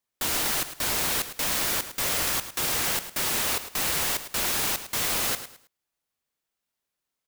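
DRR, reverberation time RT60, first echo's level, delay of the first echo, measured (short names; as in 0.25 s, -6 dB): none, none, -12.0 dB, 0.107 s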